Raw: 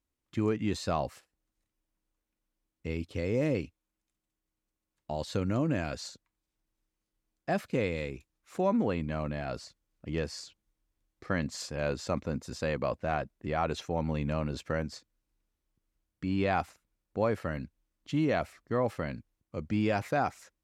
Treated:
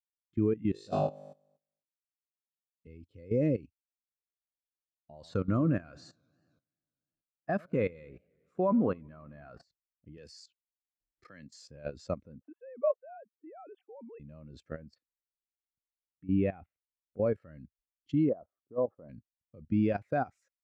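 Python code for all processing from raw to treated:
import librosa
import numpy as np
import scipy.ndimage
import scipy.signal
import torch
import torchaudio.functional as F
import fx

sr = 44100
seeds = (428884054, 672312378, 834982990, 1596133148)

y = fx.chain(x, sr, fx.peak_eq(hz=69.0, db=-14.0, octaves=1.0),
    fx.env_flanger(rest_ms=11.1, full_db=-31.0),
    fx.room_flutter(wall_m=3.4, rt60_s=0.97), at=(0.72, 2.87))
y = fx.chain(y, sr, fx.peak_eq(hz=1200.0, db=8.5, octaves=0.95),
    fx.echo_warbled(ms=91, feedback_pct=77, rate_hz=2.8, cents=174, wet_db=-18.5), at=(5.13, 9.63))
y = fx.chain(y, sr, fx.tilt_eq(slope=2.0),
    fx.band_squash(depth_pct=40), at=(10.17, 11.5))
y = fx.chain(y, sr, fx.sine_speech(),
    fx.air_absorb(metres=410.0), at=(12.41, 14.2))
y = fx.chain(y, sr, fx.lowpass(hz=3100.0, slope=24),
    fx.dynamic_eq(hz=1200.0, q=0.92, threshold_db=-43.0, ratio=4.0, max_db=-4), at=(14.95, 17.26))
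y = fx.chain(y, sr, fx.lowpass(hz=1100.0, slope=24),
    fx.low_shelf(hz=170.0, db=-11.5), at=(18.29, 19.09))
y = fx.peak_eq(y, sr, hz=880.0, db=-4.0, octaves=0.78)
y = fx.level_steps(y, sr, step_db=15)
y = fx.spectral_expand(y, sr, expansion=1.5)
y = y * 10.0 ** (2.0 / 20.0)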